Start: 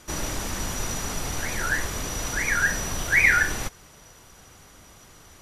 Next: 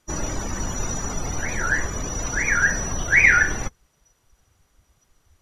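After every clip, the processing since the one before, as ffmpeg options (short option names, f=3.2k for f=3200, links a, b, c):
-af "afftdn=nr=20:nf=-35,volume=3.5dB"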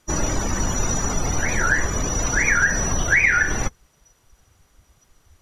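-af "acompressor=threshold=-19dB:ratio=6,volume=5dB"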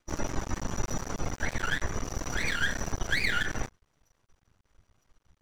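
-af "aemphasis=mode=reproduction:type=50fm,aeval=exprs='max(val(0),0)':c=same,volume=-6dB"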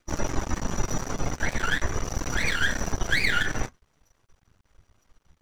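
-af "flanger=delay=0.4:depth=7.5:regen=-68:speed=0.44:shape=triangular,volume=8.5dB"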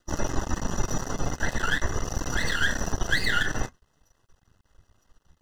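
-af "asuperstop=centerf=2300:order=20:qfactor=5.3"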